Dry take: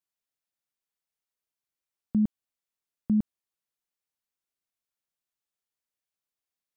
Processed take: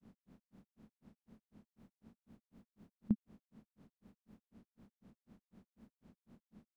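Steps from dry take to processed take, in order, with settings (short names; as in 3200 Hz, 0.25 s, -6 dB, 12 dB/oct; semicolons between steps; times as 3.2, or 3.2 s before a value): per-bin compression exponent 0.4; grains 0.156 s, grains 4/s, pitch spread up and down by 0 st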